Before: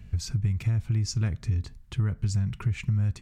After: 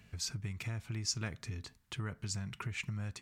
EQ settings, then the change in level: HPF 580 Hz 6 dB/oct; 0.0 dB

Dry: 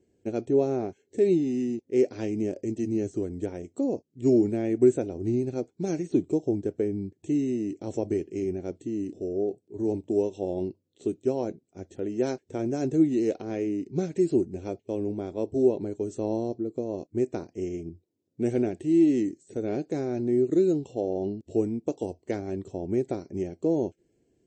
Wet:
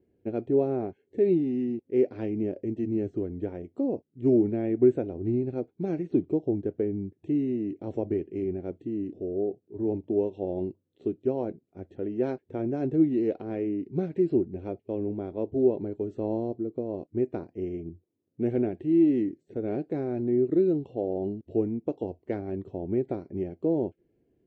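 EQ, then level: air absorption 400 m; 0.0 dB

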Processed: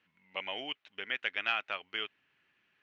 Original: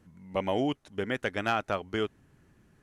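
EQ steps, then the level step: band-pass 2700 Hz, Q 2.6; air absorption 130 m; +8.0 dB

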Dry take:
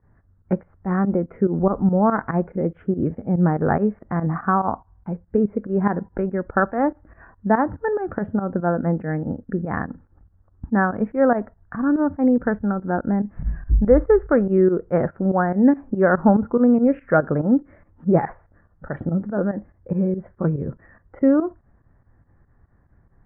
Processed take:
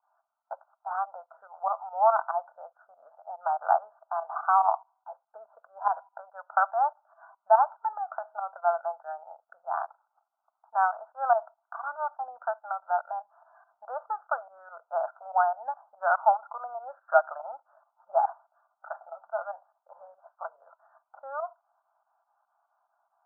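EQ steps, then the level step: Chebyshev band-pass 650–1500 Hz, order 4; fixed phaser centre 870 Hz, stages 4; notch 1100 Hz, Q 14; +2.0 dB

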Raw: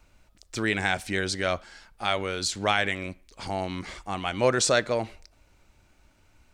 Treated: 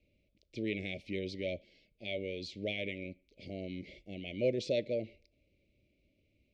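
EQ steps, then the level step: HPF 120 Hz 6 dB/oct; Chebyshev band-stop 600–2200 Hz, order 4; air absorption 300 m; -5.5 dB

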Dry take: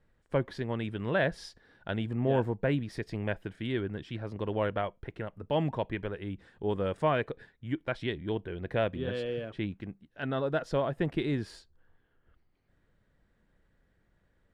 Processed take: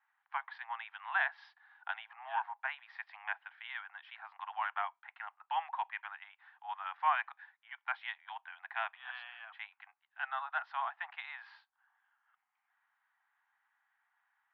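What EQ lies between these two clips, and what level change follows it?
Gaussian blur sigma 2.8 samples; steep high-pass 770 Hz 96 dB/oct; air absorption 180 m; +4.5 dB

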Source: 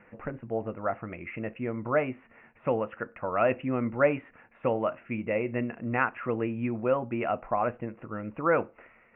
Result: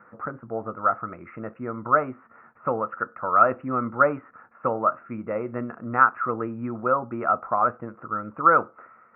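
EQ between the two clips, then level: HPF 93 Hz; synth low-pass 1300 Hz, resonance Q 7.9; air absorption 340 m; 0.0 dB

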